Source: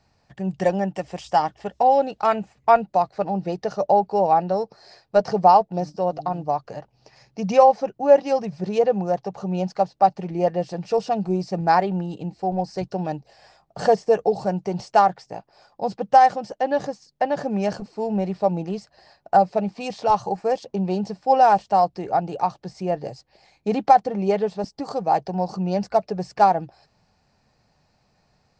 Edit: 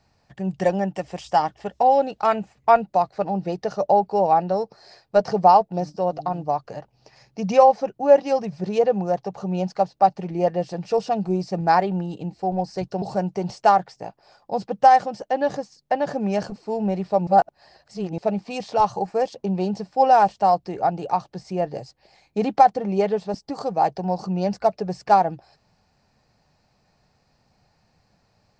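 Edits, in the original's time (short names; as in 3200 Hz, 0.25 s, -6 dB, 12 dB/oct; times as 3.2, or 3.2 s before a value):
13.02–14.32 cut
18.57–19.48 reverse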